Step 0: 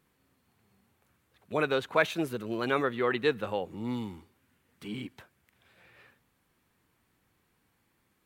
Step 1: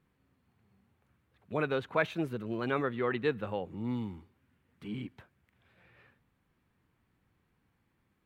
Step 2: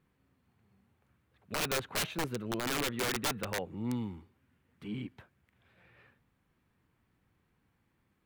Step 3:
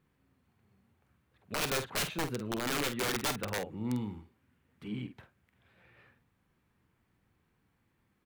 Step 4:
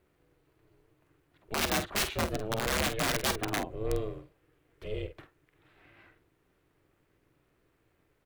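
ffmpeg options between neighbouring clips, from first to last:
-af "bass=f=250:g=6,treble=f=4k:g=-10,volume=-4dB"
-af "aeval=exprs='(mod(20*val(0)+1,2)-1)/20':c=same"
-filter_complex "[0:a]asplit=2[a][b];[b]adelay=48,volume=-9.5dB[c];[a][c]amix=inputs=2:normalize=0"
-af "aeval=exprs='val(0)*sin(2*PI*220*n/s)':c=same,volume=6dB"

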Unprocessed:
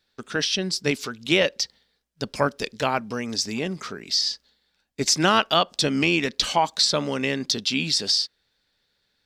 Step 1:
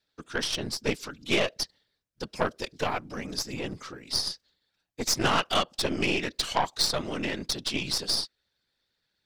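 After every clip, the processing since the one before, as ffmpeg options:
-af "afftfilt=real='hypot(re,im)*cos(2*PI*random(0))':imag='hypot(re,im)*sin(2*PI*random(1))':win_size=512:overlap=0.75,aeval=exprs='0.299*(cos(1*acos(clip(val(0)/0.299,-1,1)))-cos(1*PI/2))+0.0596*(cos(4*acos(clip(val(0)/0.299,-1,1)))-cos(4*PI/2))+0.0119*(cos(5*acos(clip(val(0)/0.299,-1,1)))-cos(5*PI/2))+0.0668*(cos(6*acos(clip(val(0)/0.299,-1,1)))-cos(6*PI/2))+0.0133*(cos(7*acos(clip(val(0)/0.299,-1,1)))-cos(7*PI/2))':c=same"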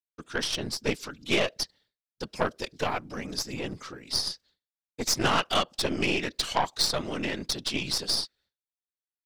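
-af "agate=range=-33dB:threshold=-56dB:ratio=3:detection=peak"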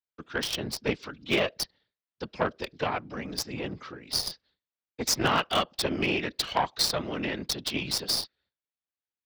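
-filter_complex "[0:a]highpass=41,acrossover=split=300|1100|4600[a][b][c][d];[d]acrusher=bits=4:mix=0:aa=0.5[e];[a][b][c][e]amix=inputs=4:normalize=0"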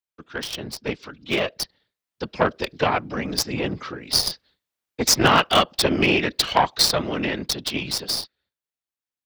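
-af "dynaudnorm=f=200:g=21:m=11.5dB"

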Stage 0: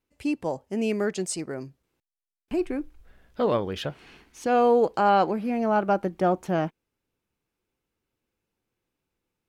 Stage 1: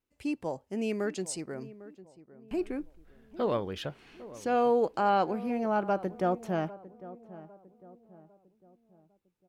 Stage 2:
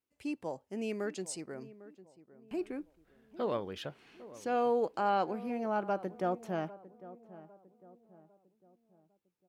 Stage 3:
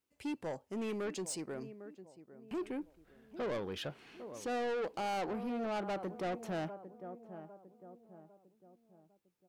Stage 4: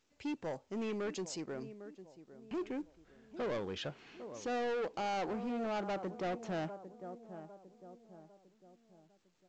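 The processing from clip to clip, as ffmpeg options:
-filter_complex "[0:a]asplit=2[a][b];[b]adelay=802,lowpass=f=1k:p=1,volume=-16dB,asplit=2[c][d];[d]adelay=802,lowpass=f=1k:p=1,volume=0.45,asplit=2[e][f];[f]adelay=802,lowpass=f=1k:p=1,volume=0.45,asplit=2[g][h];[h]adelay=802,lowpass=f=1k:p=1,volume=0.45[i];[a][c][e][g][i]amix=inputs=5:normalize=0,volume=-5.5dB"
-af "highpass=f=140:p=1,volume=-4dB"
-af "asoftclip=type=tanh:threshold=-36.5dB,volume=3dB"
-ar 16000 -c:a pcm_mulaw

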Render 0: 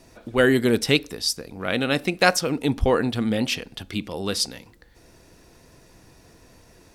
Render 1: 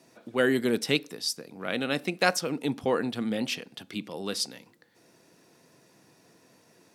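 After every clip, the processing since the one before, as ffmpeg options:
-af "highpass=f=140:w=0.5412,highpass=f=140:w=1.3066,volume=-6dB"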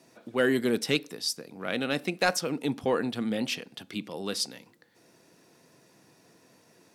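-af "asoftclip=type=tanh:threshold=-10.5dB"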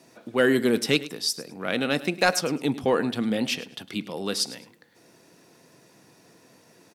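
-af "aecho=1:1:105|210:0.141|0.0325,volume=4dB"

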